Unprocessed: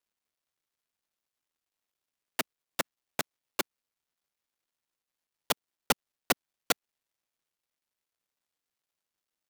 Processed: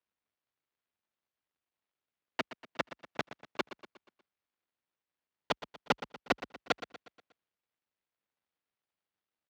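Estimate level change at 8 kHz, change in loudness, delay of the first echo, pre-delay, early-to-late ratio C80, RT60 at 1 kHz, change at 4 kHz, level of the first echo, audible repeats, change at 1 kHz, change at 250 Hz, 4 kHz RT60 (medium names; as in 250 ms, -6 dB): -17.5 dB, -4.0 dB, 120 ms, no reverb, no reverb, no reverb, -5.5 dB, -14.0 dB, 4, -1.0 dB, 0.0 dB, no reverb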